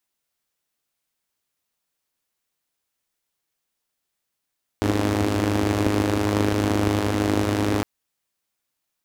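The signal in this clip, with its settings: four-cylinder engine model, steady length 3.01 s, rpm 3100, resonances 91/270 Hz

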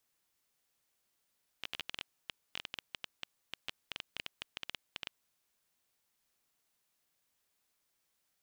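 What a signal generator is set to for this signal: random clicks 11 per s -21 dBFS 3.50 s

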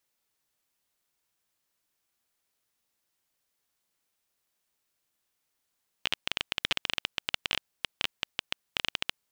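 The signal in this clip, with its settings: random clicks 14 per s -9 dBFS 3.11 s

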